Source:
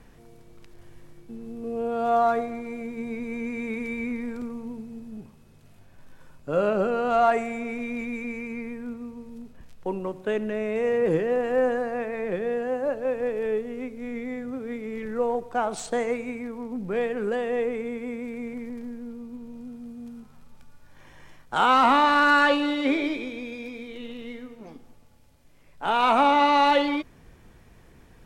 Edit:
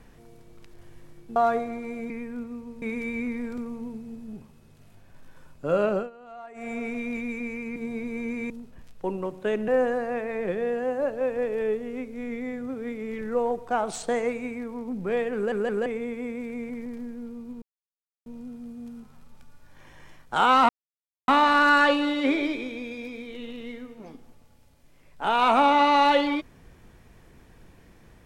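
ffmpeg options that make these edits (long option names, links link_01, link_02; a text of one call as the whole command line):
ffmpeg -i in.wav -filter_complex "[0:a]asplit=14[link_01][link_02][link_03][link_04][link_05][link_06][link_07][link_08][link_09][link_10][link_11][link_12][link_13][link_14];[link_01]atrim=end=1.362[link_15];[link_02]atrim=start=2.178:end=2.922[link_16];[link_03]atrim=start=8.598:end=9.322[link_17];[link_04]atrim=start=3.658:end=6.94,asetpts=PTS-STARTPTS,afade=type=out:start_time=3.022:duration=0.26:curve=qsin:silence=0.0749894[link_18];[link_05]atrim=start=6.94:end=7.38,asetpts=PTS-STARTPTS,volume=-22.5dB[link_19];[link_06]atrim=start=7.38:end=8.602,asetpts=PTS-STARTPTS,afade=type=in:duration=0.26:curve=qsin:silence=0.0749894[link_20];[link_07]atrim=start=2.918:end=3.662[link_21];[link_08]atrim=start=9.318:end=10.502[link_22];[link_09]atrim=start=11.518:end=17.362[link_23];[link_10]atrim=start=17.188:end=17.362[link_24];[link_11]atrim=start=17.188:end=17.362[link_25];[link_12]atrim=start=17.698:end=19.46,asetpts=PTS-STARTPTS,afade=type=out:start_time=1.758:duration=0.004:curve=hsin,apad=pad_dur=0.64[link_26];[link_13]atrim=start=19.46:end=21.89,asetpts=PTS-STARTPTS,afade=type=in:duration=0.004:curve=hsin,afade=type=out:start_time=2.426:duration=0.004:curve=hsin,apad=pad_dur=0.59[link_27];[link_14]atrim=start=21.89,asetpts=PTS-STARTPTS,afade=type=in:duration=0.004:curve=hsin[link_28];[link_15][link_16]acrossfade=duration=0.004:curve1=hsin:curve2=hsin[link_29];[link_29][link_17]acrossfade=duration=0.004:curve1=hsin:curve2=hsin[link_30];[link_18][link_19][link_20]concat=n=3:v=0:a=1[link_31];[link_30][link_31]acrossfade=duration=0.004:curve1=hsin:curve2=hsin[link_32];[link_32][link_21]acrossfade=duration=0.004:curve1=hsin:curve2=hsin[link_33];[link_33][link_22]acrossfade=duration=0.004:curve1=hsin:curve2=hsin[link_34];[link_34][link_23]acrossfade=duration=0.004:curve1=hsin:curve2=hsin[link_35];[link_35][link_24]acrossfade=duration=0.004:curve1=hsin:curve2=hsin[link_36];[link_36][link_25]acrossfade=duration=0.004:curve1=hsin:curve2=hsin[link_37];[link_26][link_27][link_28]concat=n=3:v=0:a=1[link_38];[link_37][link_38]acrossfade=duration=0.004:curve1=hsin:curve2=hsin" out.wav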